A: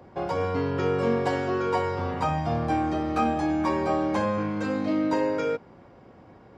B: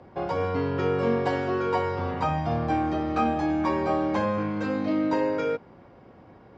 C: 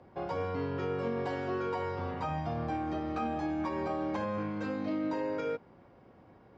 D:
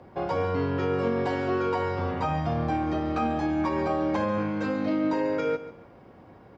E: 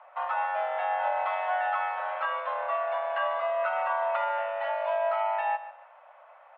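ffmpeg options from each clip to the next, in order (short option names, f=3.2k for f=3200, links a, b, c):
-af "lowpass=5.2k"
-af "alimiter=limit=-18dB:level=0:latency=1:release=63,volume=-7dB"
-af "aecho=1:1:141|282|423:0.188|0.0471|0.0118,volume=7dB"
-af "highpass=f=210:t=q:w=0.5412,highpass=f=210:t=q:w=1.307,lowpass=f=2.9k:t=q:w=0.5176,lowpass=f=2.9k:t=q:w=0.7071,lowpass=f=2.9k:t=q:w=1.932,afreqshift=360,volume=-1.5dB"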